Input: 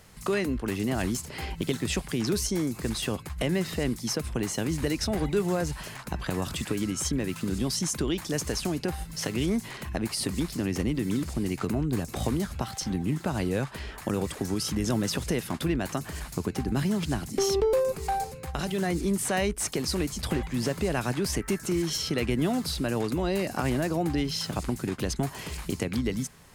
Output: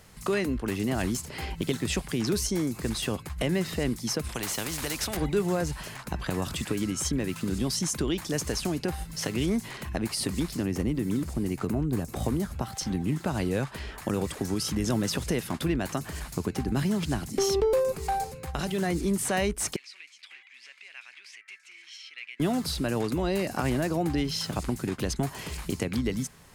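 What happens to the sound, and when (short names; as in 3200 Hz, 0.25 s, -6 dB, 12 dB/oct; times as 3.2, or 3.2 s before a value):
4.29–5.17 spectral compressor 2:1
10.63–12.76 bell 3600 Hz -5.5 dB 2.5 oct
19.76–22.4 ladder band-pass 2600 Hz, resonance 60%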